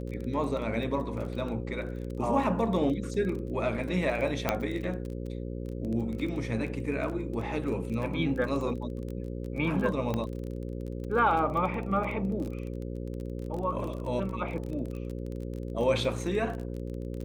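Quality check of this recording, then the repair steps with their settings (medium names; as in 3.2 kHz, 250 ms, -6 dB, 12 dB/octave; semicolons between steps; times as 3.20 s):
buzz 60 Hz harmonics 9 -36 dBFS
crackle 23 per s -35 dBFS
4.49 s: pop -10 dBFS
10.14 s: pop -18 dBFS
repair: de-click; de-hum 60 Hz, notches 9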